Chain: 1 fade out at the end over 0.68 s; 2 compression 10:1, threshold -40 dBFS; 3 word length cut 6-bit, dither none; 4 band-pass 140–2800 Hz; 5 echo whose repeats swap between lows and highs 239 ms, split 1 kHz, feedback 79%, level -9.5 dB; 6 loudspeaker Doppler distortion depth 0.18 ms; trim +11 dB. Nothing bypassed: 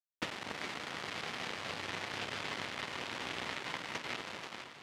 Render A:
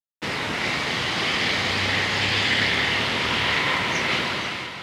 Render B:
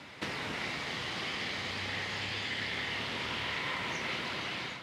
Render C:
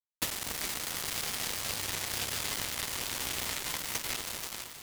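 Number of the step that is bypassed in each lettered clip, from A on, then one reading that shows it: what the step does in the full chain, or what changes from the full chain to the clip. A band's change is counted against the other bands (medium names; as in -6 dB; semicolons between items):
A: 2, mean gain reduction 11.5 dB; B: 3, 125 Hz band +4.0 dB; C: 4, 8 kHz band +17.0 dB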